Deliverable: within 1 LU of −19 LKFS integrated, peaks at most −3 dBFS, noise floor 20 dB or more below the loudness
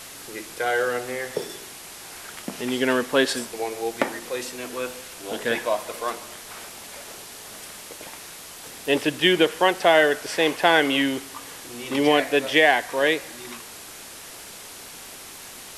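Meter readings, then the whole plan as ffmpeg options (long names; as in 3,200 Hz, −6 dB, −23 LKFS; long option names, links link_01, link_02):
background noise floor −41 dBFS; target noise floor −43 dBFS; integrated loudness −22.5 LKFS; sample peak −4.5 dBFS; target loudness −19.0 LKFS
→ -af "afftdn=noise_reduction=6:noise_floor=-41"
-af "volume=3.5dB,alimiter=limit=-3dB:level=0:latency=1"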